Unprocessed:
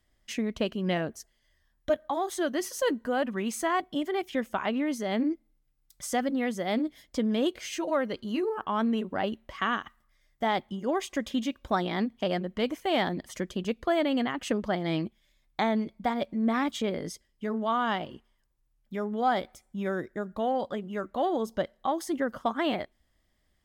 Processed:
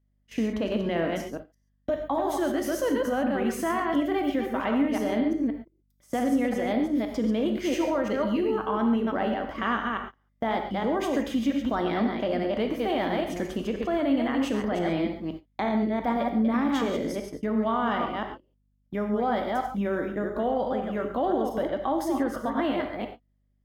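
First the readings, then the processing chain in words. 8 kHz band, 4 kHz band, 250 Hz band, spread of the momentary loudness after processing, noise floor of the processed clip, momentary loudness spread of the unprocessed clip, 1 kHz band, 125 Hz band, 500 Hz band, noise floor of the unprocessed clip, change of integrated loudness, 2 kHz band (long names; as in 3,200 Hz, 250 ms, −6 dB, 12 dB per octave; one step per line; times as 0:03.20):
−3.0 dB, −2.0 dB, +4.5 dB, 7 LU, −70 dBFS, 7 LU, +1.5 dB, +1.5 dB, +3.0 dB, −72 dBFS, +3.0 dB, +1.0 dB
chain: delay that plays each chunk backwards 172 ms, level −6 dB
graphic EQ with 10 bands 125 Hz −8 dB, 250 Hz +7 dB, 500 Hz +6 dB, 4,000 Hz −4 dB, 8,000 Hz −8 dB
brickwall limiter −19 dBFS, peak gain reduction 10 dB
reverb whose tail is shaped and stops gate 160 ms flat, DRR 4.5 dB
dynamic equaliser 410 Hz, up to −5 dB, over −37 dBFS, Q 0.87
mains hum 50 Hz, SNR 23 dB
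noise gate −39 dBFS, range −20 dB
level +3 dB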